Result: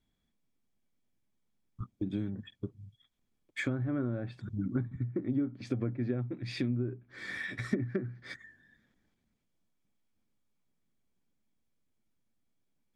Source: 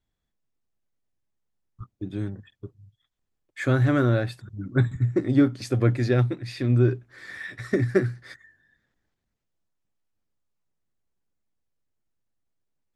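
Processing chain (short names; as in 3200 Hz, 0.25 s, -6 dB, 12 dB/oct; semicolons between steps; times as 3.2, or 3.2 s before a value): treble ducked by the level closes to 1400 Hz, closed at -18.5 dBFS; compressor 6:1, threshold -35 dBFS, peak gain reduction 19.5 dB; small resonant body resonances 220/2300/3300 Hz, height 9 dB, ringing for 25 ms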